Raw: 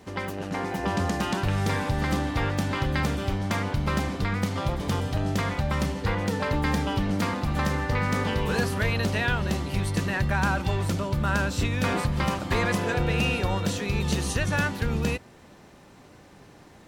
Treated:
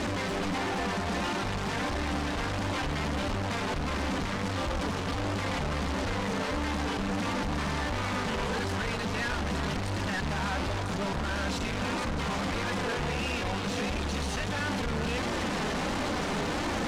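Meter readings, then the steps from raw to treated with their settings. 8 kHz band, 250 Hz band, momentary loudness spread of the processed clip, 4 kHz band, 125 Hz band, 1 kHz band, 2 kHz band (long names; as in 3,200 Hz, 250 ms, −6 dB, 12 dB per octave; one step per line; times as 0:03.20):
−2.0 dB, −4.0 dB, 1 LU, 0.0 dB, −7.5 dB, −2.0 dB, −3.0 dB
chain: sign of each sample alone
high-frequency loss of the air 78 metres
flanger 1.5 Hz, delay 3.2 ms, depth 1.6 ms, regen −33%
on a send: feedback echo with a band-pass in the loop 380 ms, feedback 85%, band-pass 950 Hz, level −9.5 dB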